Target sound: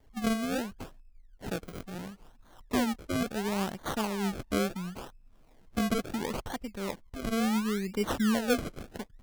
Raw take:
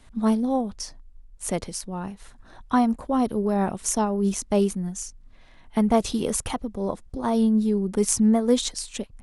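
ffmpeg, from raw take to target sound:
-af "acrusher=samples=33:mix=1:aa=0.000001:lfo=1:lforange=33:lforate=0.72,volume=-8dB"

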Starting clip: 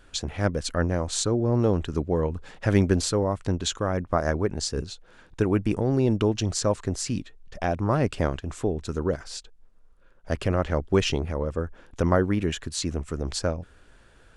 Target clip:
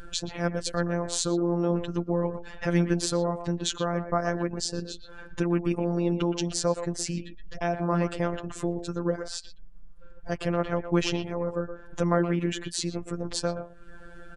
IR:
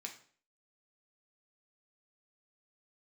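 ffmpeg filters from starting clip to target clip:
-filter_complex "[0:a]asplit=2[a][b];[b]adelay=120,highpass=300,lowpass=3.4k,asoftclip=type=hard:threshold=-15.5dB,volume=-9dB[c];[a][c]amix=inputs=2:normalize=0,asplit=2[d][e];[e]acompressor=threshold=-36dB:ratio=6,volume=-0.5dB[f];[d][f]amix=inputs=2:normalize=0,afftfilt=real='hypot(re,im)*cos(PI*b)':imag='0':win_size=1024:overlap=0.75,afftdn=nr=14:nf=-50,acompressor=mode=upward:threshold=-31dB:ratio=2.5"

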